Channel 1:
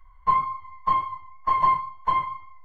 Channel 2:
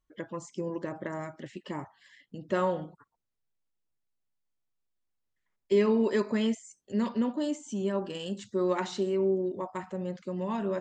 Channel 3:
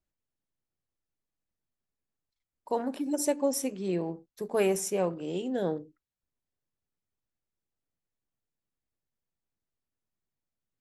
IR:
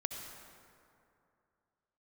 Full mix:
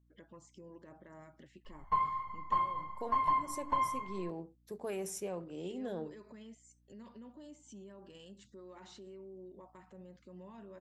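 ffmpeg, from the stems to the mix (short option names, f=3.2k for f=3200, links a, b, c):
-filter_complex "[0:a]adelay=1650,volume=-4dB,asplit=2[a][b];[b]volume=-12.5dB[c];[1:a]alimiter=level_in=9.5dB:limit=-24dB:level=0:latency=1:release=186,volume=-9.5dB,aeval=exprs='val(0)+0.00126*(sin(2*PI*60*n/s)+sin(2*PI*2*60*n/s)/2+sin(2*PI*3*60*n/s)/3+sin(2*PI*4*60*n/s)/4+sin(2*PI*5*60*n/s)/5)':c=same,volume=-11dB[d];[2:a]alimiter=limit=-20.5dB:level=0:latency=1:release=27,adelay=300,volume=-8.5dB[e];[a][e]amix=inputs=2:normalize=0,acompressor=threshold=-34dB:ratio=4,volume=0dB[f];[3:a]atrim=start_sample=2205[g];[c][g]afir=irnorm=-1:irlink=0[h];[d][f][h]amix=inputs=3:normalize=0"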